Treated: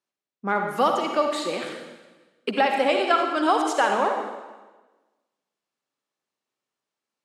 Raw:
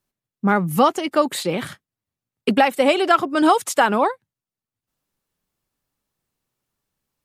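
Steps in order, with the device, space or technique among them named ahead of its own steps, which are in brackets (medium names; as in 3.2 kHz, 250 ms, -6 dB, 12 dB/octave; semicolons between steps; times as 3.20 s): supermarket ceiling speaker (band-pass 320–6800 Hz; reverberation RT60 1.2 s, pre-delay 47 ms, DRR 2.5 dB); trim -5 dB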